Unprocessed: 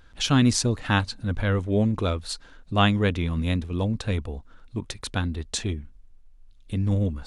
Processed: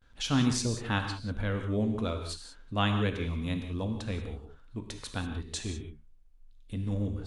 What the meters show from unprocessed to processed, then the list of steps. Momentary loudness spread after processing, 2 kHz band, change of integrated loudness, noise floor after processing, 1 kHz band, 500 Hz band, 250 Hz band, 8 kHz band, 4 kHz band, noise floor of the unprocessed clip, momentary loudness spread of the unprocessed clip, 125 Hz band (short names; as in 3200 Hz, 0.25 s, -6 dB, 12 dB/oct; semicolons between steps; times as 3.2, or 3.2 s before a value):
14 LU, -7.0 dB, -7.0 dB, -56 dBFS, -7.0 dB, -7.0 dB, -6.5 dB, -7.0 dB, -6.5 dB, -51 dBFS, 14 LU, -7.5 dB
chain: non-linear reverb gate 0.21 s flat, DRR 5 dB; gate with hold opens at -46 dBFS; gain -8 dB